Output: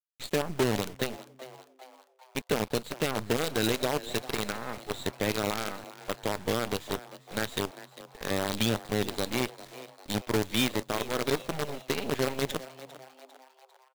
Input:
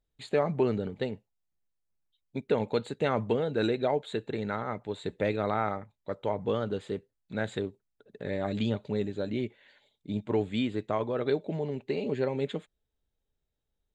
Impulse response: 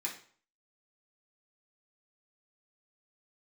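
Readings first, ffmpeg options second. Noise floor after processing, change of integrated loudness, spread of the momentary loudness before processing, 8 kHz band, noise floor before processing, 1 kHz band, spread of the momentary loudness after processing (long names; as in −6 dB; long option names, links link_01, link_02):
−61 dBFS, +0.5 dB, 10 LU, can't be measured, −83 dBFS, +0.5 dB, 17 LU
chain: -filter_complex "[0:a]lowpass=4600,acrossover=split=370[link_01][link_02];[link_02]alimiter=level_in=1.5dB:limit=-24dB:level=0:latency=1:release=248,volume=-1.5dB[link_03];[link_01][link_03]amix=inputs=2:normalize=0,crystalizer=i=6:c=0,acrusher=bits=5:dc=4:mix=0:aa=0.000001,asplit=5[link_04][link_05][link_06][link_07][link_08];[link_05]adelay=399,afreqshift=130,volume=-16.5dB[link_09];[link_06]adelay=798,afreqshift=260,volume=-22.5dB[link_10];[link_07]adelay=1197,afreqshift=390,volume=-28.5dB[link_11];[link_08]adelay=1596,afreqshift=520,volume=-34.6dB[link_12];[link_04][link_09][link_10][link_11][link_12]amix=inputs=5:normalize=0"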